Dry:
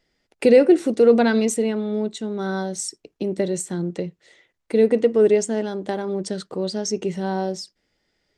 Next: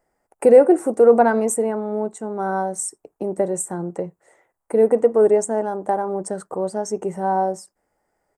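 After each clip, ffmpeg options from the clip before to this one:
-af "firequalizer=gain_entry='entry(250,0);entry(800,14);entry(2000,-3);entry(3600,-19);entry(8300,9)':delay=0.05:min_phase=1,volume=0.668"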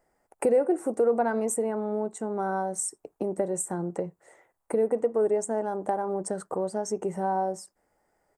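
-af "acompressor=threshold=0.0355:ratio=2"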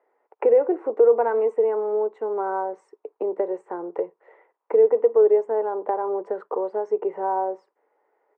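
-af "highpass=f=350:w=0.5412,highpass=f=350:w=1.3066,equalizer=f=440:t=q:w=4:g=8,equalizer=f=680:t=q:w=4:g=-3,equalizer=f=980:t=q:w=4:g=6,equalizer=f=1600:t=q:w=4:g=-3,lowpass=f=2600:w=0.5412,lowpass=f=2600:w=1.3066,volume=1.26"

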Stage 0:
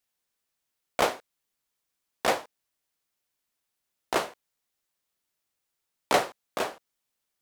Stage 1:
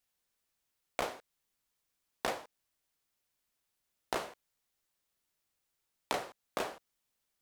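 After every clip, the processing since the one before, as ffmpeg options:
-af "acompressor=threshold=0.0316:ratio=12,lowshelf=f=92:g=6.5,volume=0.891"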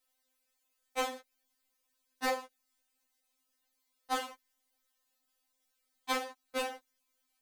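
-af "afftfilt=real='re*3.46*eq(mod(b,12),0)':imag='im*3.46*eq(mod(b,12),0)':win_size=2048:overlap=0.75,volume=1.88"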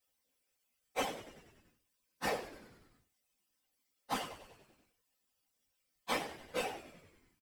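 -filter_complex "[0:a]asplit=2[s0][s1];[s1]adelay=19,volume=0.447[s2];[s0][s2]amix=inputs=2:normalize=0,afftfilt=real='hypot(re,im)*cos(2*PI*random(0))':imag='hypot(re,im)*sin(2*PI*random(1))':win_size=512:overlap=0.75,asplit=8[s3][s4][s5][s6][s7][s8][s9][s10];[s4]adelay=96,afreqshift=-81,volume=0.188[s11];[s5]adelay=192,afreqshift=-162,volume=0.119[s12];[s6]adelay=288,afreqshift=-243,volume=0.075[s13];[s7]adelay=384,afreqshift=-324,volume=0.0473[s14];[s8]adelay=480,afreqshift=-405,volume=0.0295[s15];[s9]adelay=576,afreqshift=-486,volume=0.0186[s16];[s10]adelay=672,afreqshift=-567,volume=0.0117[s17];[s3][s11][s12][s13][s14][s15][s16][s17]amix=inputs=8:normalize=0,volume=1.41"

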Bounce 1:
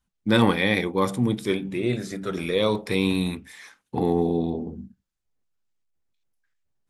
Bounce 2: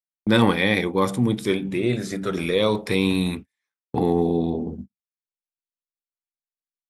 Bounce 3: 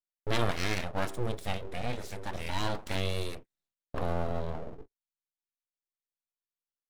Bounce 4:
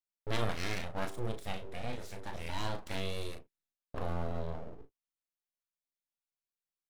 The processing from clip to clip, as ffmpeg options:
-filter_complex "[0:a]agate=range=0.00708:threshold=0.0158:ratio=16:detection=peak,asplit=2[s0][s1];[s1]acompressor=threshold=0.0398:ratio=6,volume=0.708[s2];[s0][s2]amix=inputs=2:normalize=0"
-af "aeval=exprs='abs(val(0))':c=same,volume=0.355"
-filter_complex "[0:a]asplit=2[s0][s1];[s1]adelay=36,volume=0.398[s2];[s0][s2]amix=inputs=2:normalize=0,volume=0.531"

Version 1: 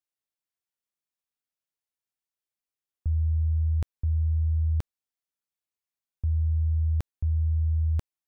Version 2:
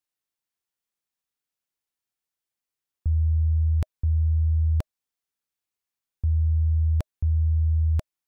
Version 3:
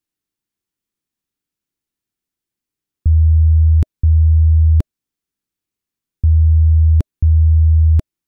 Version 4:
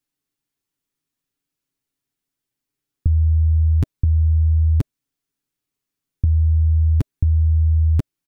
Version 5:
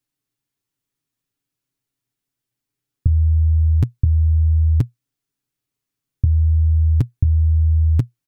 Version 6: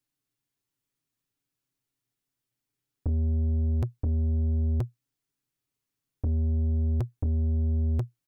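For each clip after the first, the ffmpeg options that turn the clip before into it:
-af "bandreject=f=620:w=12,volume=1.41"
-af "lowshelf=f=430:t=q:w=1.5:g=8.5,volume=1.33"
-af "aecho=1:1:7.2:0.58"
-af "equalizer=f=120:w=4.5:g=9"
-af "asoftclip=type=tanh:threshold=0.0944,volume=0.708"

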